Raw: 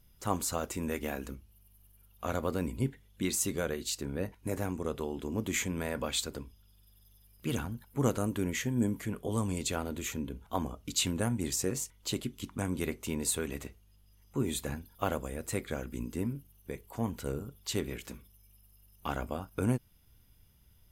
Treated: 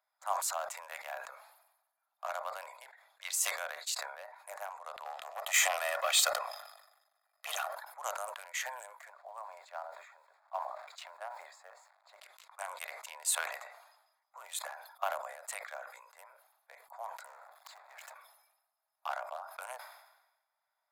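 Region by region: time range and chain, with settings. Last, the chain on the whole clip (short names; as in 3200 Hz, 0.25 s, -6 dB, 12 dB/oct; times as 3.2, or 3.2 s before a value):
5.05–7.75 sample leveller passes 2 + comb 1.6 ms, depth 55%
9.1–12.19 LPF 1000 Hz 6 dB/oct + requantised 10-bit, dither none + notch 500 Hz, Q 9.6
17.24–18.14 auto swell 0.547 s + compressor 2.5:1, threshold -46 dBFS + power-law curve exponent 0.35
whole clip: Wiener smoothing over 15 samples; steep high-pass 620 Hz 72 dB/oct; sustainer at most 58 dB/s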